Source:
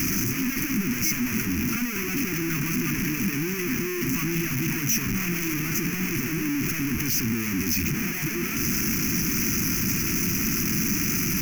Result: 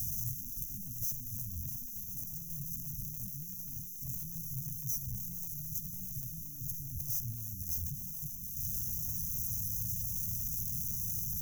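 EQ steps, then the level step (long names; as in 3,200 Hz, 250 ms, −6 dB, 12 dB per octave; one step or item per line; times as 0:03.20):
Chebyshev band-stop filter 120–7,500 Hz, order 3
notch filter 2,000 Hz, Q 6.7
−7.0 dB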